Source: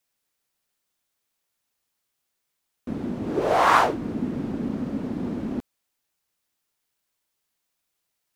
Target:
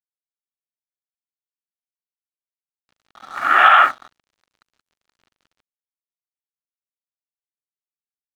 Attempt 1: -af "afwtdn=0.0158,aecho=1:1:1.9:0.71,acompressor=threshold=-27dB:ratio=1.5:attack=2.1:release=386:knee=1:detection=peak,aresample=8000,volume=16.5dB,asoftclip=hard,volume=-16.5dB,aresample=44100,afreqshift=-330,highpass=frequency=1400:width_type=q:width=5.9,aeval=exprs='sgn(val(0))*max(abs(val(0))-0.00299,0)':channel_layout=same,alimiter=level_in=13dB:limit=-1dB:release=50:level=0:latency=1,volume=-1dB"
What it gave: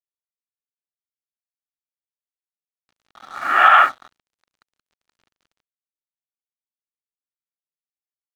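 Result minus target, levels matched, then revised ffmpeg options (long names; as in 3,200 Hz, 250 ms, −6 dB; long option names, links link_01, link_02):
downward compressor: peak gain reduction +2.5 dB
-af "afwtdn=0.0158,aecho=1:1:1.9:0.71,acompressor=threshold=-19dB:ratio=1.5:attack=2.1:release=386:knee=1:detection=peak,aresample=8000,volume=16.5dB,asoftclip=hard,volume=-16.5dB,aresample=44100,afreqshift=-330,highpass=frequency=1400:width_type=q:width=5.9,aeval=exprs='sgn(val(0))*max(abs(val(0))-0.00299,0)':channel_layout=same,alimiter=level_in=13dB:limit=-1dB:release=50:level=0:latency=1,volume=-1dB"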